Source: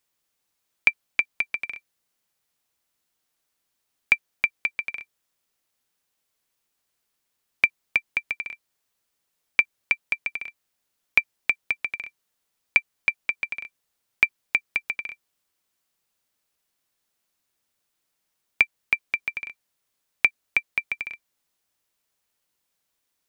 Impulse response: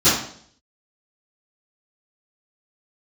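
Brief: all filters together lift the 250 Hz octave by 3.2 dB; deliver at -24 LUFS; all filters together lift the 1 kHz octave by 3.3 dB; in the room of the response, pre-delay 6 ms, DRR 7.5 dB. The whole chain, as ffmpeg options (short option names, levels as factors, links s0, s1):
-filter_complex "[0:a]equalizer=f=250:t=o:g=4,equalizer=f=1000:t=o:g=4,asplit=2[s0][s1];[1:a]atrim=start_sample=2205,adelay=6[s2];[s1][s2]afir=irnorm=-1:irlink=0,volume=0.0376[s3];[s0][s3]amix=inputs=2:normalize=0,volume=1.06"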